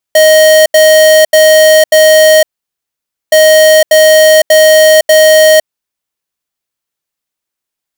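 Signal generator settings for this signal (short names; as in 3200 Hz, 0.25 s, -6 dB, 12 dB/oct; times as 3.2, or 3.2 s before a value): beep pattern square 625 Hz, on 0.51 s, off 0.08 s, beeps 4, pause 0.89 s, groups 2, -4 dBFS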